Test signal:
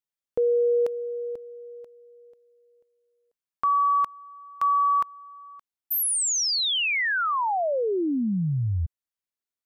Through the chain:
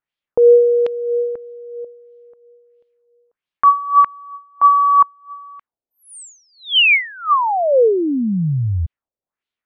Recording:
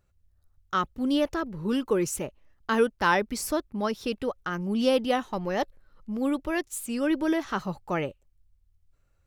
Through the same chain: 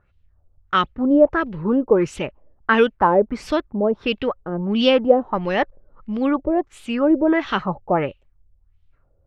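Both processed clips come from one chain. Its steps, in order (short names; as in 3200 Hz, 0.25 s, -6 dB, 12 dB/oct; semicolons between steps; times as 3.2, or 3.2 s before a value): LFO low-pass sine 1.5 Hz 520–3400 Hz; gain +6.5 dB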